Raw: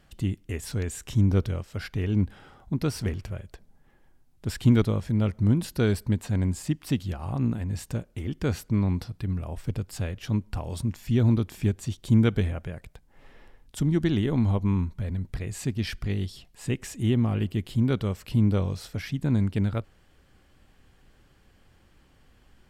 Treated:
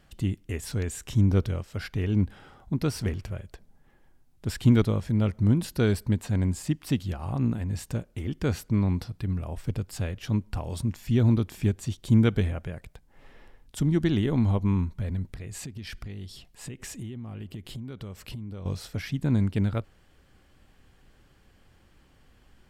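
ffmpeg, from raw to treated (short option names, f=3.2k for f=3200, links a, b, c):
-filter_complex "[0:a]asettb=1/sr,asplit=3[a][b][c];[a]atrim=end=15.334[d];[b]atrim=start=15.33:end=18.66,asetpts=PTS-STARTPTS,afade=t=in:d=0.004:c=qsin,afade=t=out:st=3.326:d=0.004:c=qsin,acompressor=threshold=-34dB:ratio=10:attack=3.2:release=140:knee=1:detection=peak[e];[c]atrim=start=18.656[f];[d][e]acrossfade=d=0.004:c1=hsin:c2=qsin[g];[g][f]acrossfade=d=0.004:c1=qsin:c2=hsin"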